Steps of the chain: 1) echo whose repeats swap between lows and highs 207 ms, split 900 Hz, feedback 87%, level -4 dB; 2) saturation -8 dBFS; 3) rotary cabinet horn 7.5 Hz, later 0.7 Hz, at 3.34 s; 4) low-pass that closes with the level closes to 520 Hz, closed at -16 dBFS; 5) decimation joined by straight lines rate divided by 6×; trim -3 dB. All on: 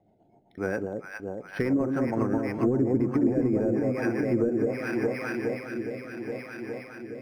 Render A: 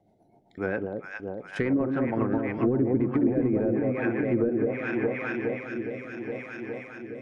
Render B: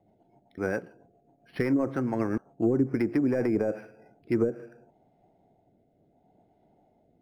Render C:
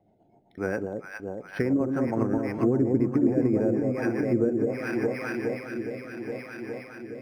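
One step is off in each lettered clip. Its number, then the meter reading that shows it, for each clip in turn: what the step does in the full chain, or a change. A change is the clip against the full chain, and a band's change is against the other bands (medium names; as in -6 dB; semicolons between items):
5, 2 kHz band +1.5 dB; 1, crest factor change +2.5 dB; 2, distortion -19 dB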